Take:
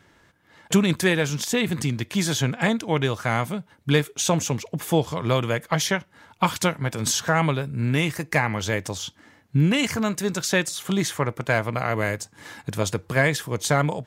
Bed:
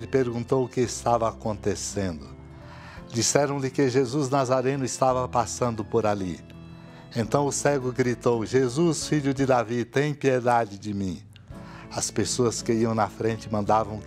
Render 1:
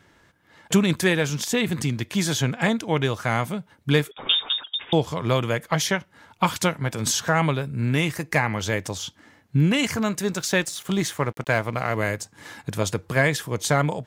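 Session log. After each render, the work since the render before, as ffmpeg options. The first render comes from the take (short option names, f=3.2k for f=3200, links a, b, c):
-filter_complex "[0:a]asettb=1/sr,asplit=3[a][b][c];[a]atrim=end=4.114[d];[b]atrim=start=4.11:end=4.93,asetpts=PTS-STARTPTS,afade=t=in:d=0.004:c=qsin,afade=t=out:st=0.816:d=0.004:c=qsin,lowpass=f=3.2k:t=q:w=0.5098,lowpass=f=3.2k:t=q:w=0.6013,lowpass=f=3.2k:t=q:w=0.9,lowpass=f=3.2k:t=q:w=2.563,afreqshift=-3800[e];[c]atrim=start=4.926[f];[d][e]acrossfade=d=0.004:c1=hsin:c2=qsin[g];[g][f]acrossfade=d=0.004:c1=qsin:c2=hsin,asettb=1/sr,asplit=3[h][i][j];[h]atrim=end=10.324[k];[i]atrim=start=10.32:end=11.97,asetpts=PTS-STARTPTS,afade=t=in:d=0.004:c=qsin,afade=t=out:st=1.646:d=0.004:c=qsin,aeval=exprs='sgn(val(0))*max(abs(val(0))-0.00562,0)':c=same[l];[j]atrim=start=11.966[m];[k][l]acrossfade=d=0.004:c1=hsin:c2=qsin[n];[n][m]acrossfade=d=0.004:c1=qsin:c2=hsin"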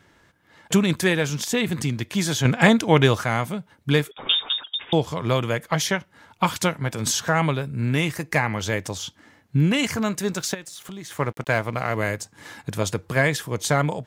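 -filter_complex "[0:a]asplit=3[a][b][c];[a]afade=t=out:st=10.53:d=0.02[d];[b]acompressor=threshold=-36dB:ratio=4:attack=3.2:release=140:knee=1:detection=peak,afade=t=in:st=10.53:d=0.02,afade=t=out:st=11.1:d=0.02[e];[c]afade=t=in:st=11.1:d=0.02[f];[d][e][f]amix=inputs=3:normalize=0,asplit=3[g][h][i];[g]atrim=end=2.452[j];[h]atrim=start=2.448:end=3.242,asetpts=PTS-STARTPTS,volume=6.5dB[k];[i]atrim=start=3.238[l];[j][k]acrossfade=d=0.004:c1=hsin:c2=hsin[m];[m][l]acrossfade=d=0.004:c1=hsin:c2=hsin"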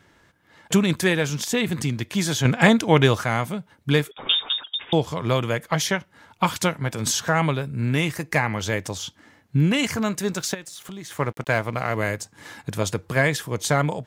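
-af anull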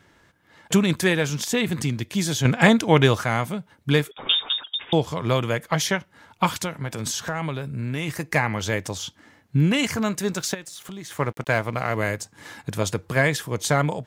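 -filter_complex "[0:a]asettb=1/sr,asplit=3[a][b][c];[a]atrim=end=1.994[d];[b]atrim=start=1.99:end=2.45,asetpts=PTS-STARTPTS,afade=t=in:d=0.004:c=qsin,afade=t=out:st=0.456:d=0.004:c=qsin,equalizer=f=1.2k:t=o:w=2:g=-5[e];[c]atrim=start=2.446[f];[d][e]acrossfade=d=0.004:c1=hsin:c2=qsin[g];[g][f]acrossfade=d=0.004:c1=qsin:c2=hsin,asplit=3[h][i][j];[h]afade=t=out:st=6.6:d=0.02[k];[i]acompressor=threshold=-26dB:ratio=2.5:attack=3.2:release=140:knee=1:detection=peak,afade=t=in:st=6.6:d=0.02,afade=t=out:st=8.07:d=0.02[l];[j]afade=t=in:st=8.07:d=0.02[m];[k][l][m]amix=inputs=3:normalize=0"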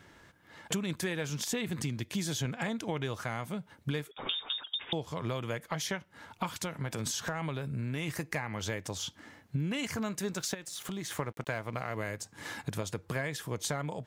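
-af "alimiter=limit=-12.5dB:level=0:latency=1:release=477,acompressor=threshold=-34dB:ratio=3"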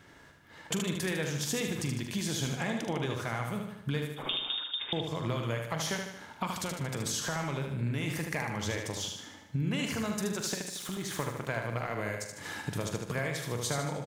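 -filter_complex "[0:a]asplit=2[a][b];[b]adelay=43,volume=-11dB[c];[a][c]amix=inputs=2:normalize=0,aecho=1:1:76|152|228|304|380|456|532:0.562|0.298|0.158|0.0837|0.0444|0.0235|0.0125"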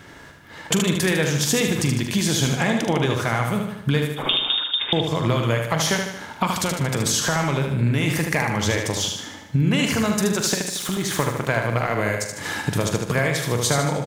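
-af "volume=12dB"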